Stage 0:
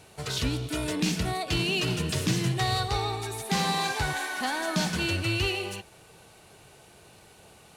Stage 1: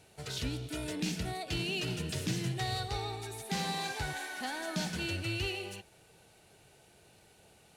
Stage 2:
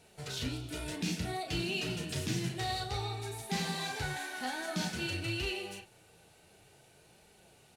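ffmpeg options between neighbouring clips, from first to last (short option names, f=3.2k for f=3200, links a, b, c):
-af "equalizer=f=1.1k:w=4.5:g=-7.5,volume=-7.5dB"
-filter_complex "[0:a]asplit=2[a][b];[b]adelay=35,volume=-6dB[c];[a][c]amix=inputs=2:normalize=0,flanger=delay=4.2:depth=8.3:regen=-49:speed=0.55:shape=triangular,volume=3dB"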